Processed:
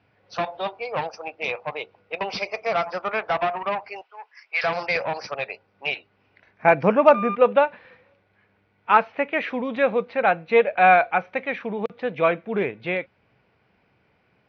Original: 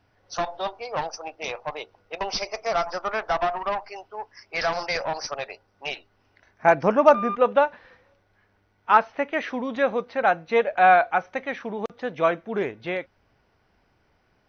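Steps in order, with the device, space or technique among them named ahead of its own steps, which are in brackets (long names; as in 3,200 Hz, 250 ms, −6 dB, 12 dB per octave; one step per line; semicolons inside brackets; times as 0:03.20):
0:04.01–0:04.64: high-pass filter 1,100 Hz 12 dB per octave
guitar cabinet (loudspeaker in its box 82–4,400 Hz, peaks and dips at 130 Hz +5 dB, 190 Hz +5 dB, 480 Hz +4 dB, 2,400 Hz +8 dB)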